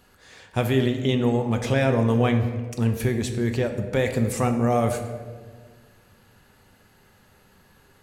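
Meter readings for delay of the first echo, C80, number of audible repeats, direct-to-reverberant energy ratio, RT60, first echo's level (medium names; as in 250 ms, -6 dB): no echo, 10.0 dB, no echo, 5.0 dB, 1.6 s, no echo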